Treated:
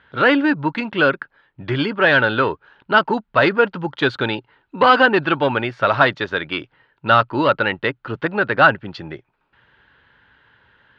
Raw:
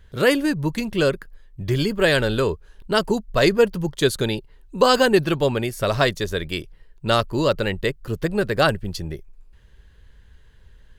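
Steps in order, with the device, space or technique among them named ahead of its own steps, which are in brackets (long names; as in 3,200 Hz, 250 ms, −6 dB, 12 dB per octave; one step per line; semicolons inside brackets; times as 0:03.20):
overdrive pedal into a guitar cabinet (mid-hump overdrive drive 14 dB, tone 7,700 Hz, clips at −3 dBFS; loudspeaker in its box 110–3,400 Hz, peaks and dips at 120 Hz +7 dB, 280 Hz +7 dB, 420 Hz −3 dB, 870 Hz +7 dB, 1,400 Hz +9 dB)
level −2.5 dB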